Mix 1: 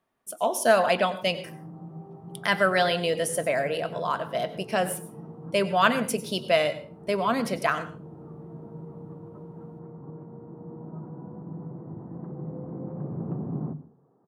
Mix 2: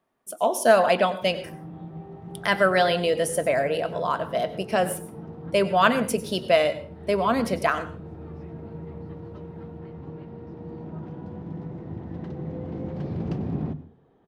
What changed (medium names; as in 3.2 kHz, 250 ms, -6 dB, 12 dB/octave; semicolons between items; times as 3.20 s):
background: remove Chebyshev band-pass 130–1200 Hz, order 3; master: add peaking EQ 420 Hz +3.5 dB 2.7 oct